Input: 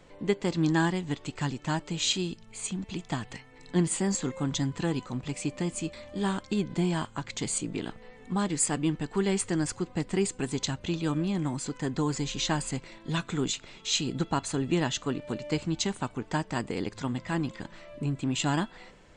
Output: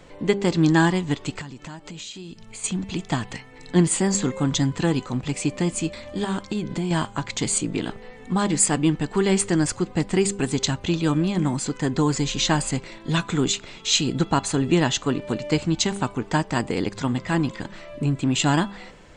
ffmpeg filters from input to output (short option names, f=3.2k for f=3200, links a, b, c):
-filter_complex "[0:a]asettb=1/sr,asplit=3[a][b][c];[a]atrim=end=1.414[d];[b]atrim=start=1.41:end=2.64,asetpts=PTS-STARTPTS,afade=t=in:d=0.004:c=qsin,afade=t=out:st=1.226:d=0.004:c=qsin,acompressor=threshold=-41dB:ratio=12:attack=3.2:release=140:knee=1:detection=peak[e];[c]atrim=start=2.636[f];[d][e]acrossfade=d=0.004:c1=hsin:c2=qsin[g];[g][f]acrossfade=d=0.004:c1=qsin:c2=hsin,asettb=1/sr,asplit=3[h][i][j];[h]atrim=end=6.244[k];[i]atrim=start=6.24:end=6.91,asetpts=PTS-STARTPTS,afade=t=in:d=0.004:c=qsin,afade=t=out:st=0.666:d=0.004:c=qsin,acompressor=threshold=-29dB:ratio=6:attack=3.2:release=140:knee=1:detection=peak[l];[j]atrim=start=6.906[m];[k][l]acrossfade=d=0.004:c1=hsin:c2=qsin[n];[n][m]acrossfade=d=0.004:c1=qsin:c2=hsin,bandreject=f=199.6:t=h:w=4,bandreject=f=399.2:t=h:w=4,bandreject=f=598.8:t=h:w=4,bandreject=f=798.4:t=h:w=4,bandreject=f=998:t=h:w=4,bandreject=f=1.1976k:t=h:w=4,volume=7.5dB"